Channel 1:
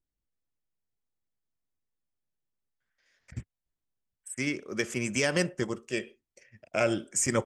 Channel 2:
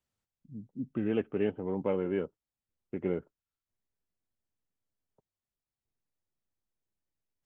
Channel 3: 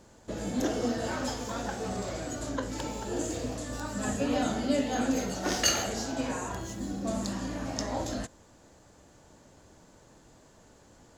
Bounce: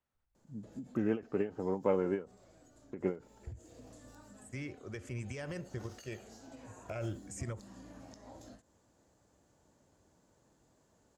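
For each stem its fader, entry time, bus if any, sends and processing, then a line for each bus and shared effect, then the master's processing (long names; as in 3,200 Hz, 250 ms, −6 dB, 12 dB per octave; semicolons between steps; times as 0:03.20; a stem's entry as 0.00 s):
−8.0 dB, 0.15 s, bus A, no send, low shelf with overshoot 130 Hz +13.5 dB, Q 1.5
−1.5 dB, 0.00 s, no bus, no send, parametric band 1,300 Hz +7 dB 2.4 octaves
−12.0 dB, 0.35 s, bus A, no send, high-pass filter 46 Hz; high-shelf EQ 4,900 Hz +11.5 dB; downward compressor 8 to 1, threshold −35 dBFS, peak gain reduction 20 dB; automatic ducking −9 dB, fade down 1.30 s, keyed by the second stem
bus A: 0.0 dB, brickwall limiter −27.5 dBFS, peak gain reduction 8.5 dB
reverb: not used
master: high-shelf EQ 2,100 Hz −9.5 dB; every ending faded ahead of time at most 200 dB per second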